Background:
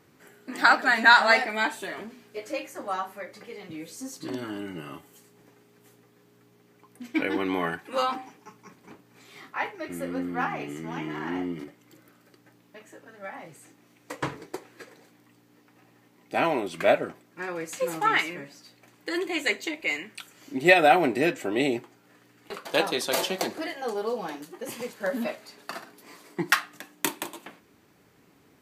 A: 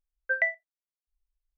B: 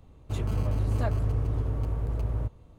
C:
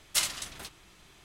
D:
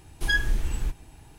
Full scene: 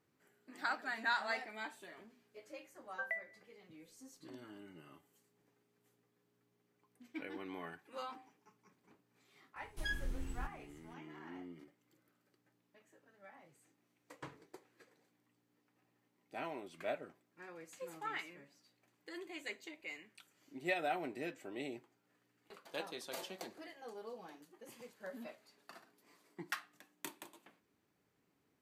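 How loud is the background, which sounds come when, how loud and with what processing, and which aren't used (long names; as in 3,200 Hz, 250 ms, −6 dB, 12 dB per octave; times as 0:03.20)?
background −19 dB
0:02.69: mix in A −14.5 dB + four-comb reverb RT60 0.81 s, DRR 19 dB
0:09.56: mix in D −15.5 dB
not used: B, C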